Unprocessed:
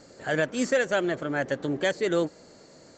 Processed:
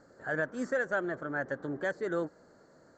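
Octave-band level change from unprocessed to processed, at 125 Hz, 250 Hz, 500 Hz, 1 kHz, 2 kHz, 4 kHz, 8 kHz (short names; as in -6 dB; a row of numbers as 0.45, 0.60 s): -8.0 dB, -8.0 dB, -7.5 dB, -5.0 dB, -4.0 dB, -19.5 dB, under -15 dB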